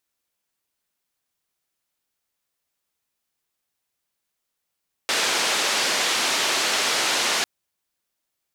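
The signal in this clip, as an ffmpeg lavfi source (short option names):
-f lavfi -i "anoisesrc=c=white:d=2.35:r=44100:seed=1,highpass=f=320,lowpass=f=5400,volume=-11.6dB"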